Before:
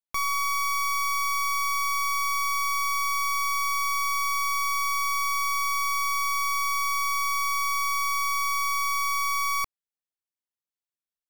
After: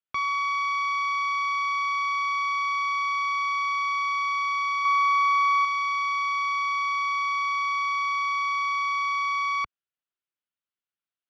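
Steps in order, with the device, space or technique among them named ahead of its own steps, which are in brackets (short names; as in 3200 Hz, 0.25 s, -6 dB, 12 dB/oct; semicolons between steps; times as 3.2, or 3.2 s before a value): guitar cabinet (speaker cabinet 76–4000 Hz, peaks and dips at 480 Hz -4 dB, 850 Hz -4 dB, 1400 Hz +6 dB, 2900 Hz +4 dB); 4.85–5.65 bell 1300 Hz +6.5 dB 1.2 oct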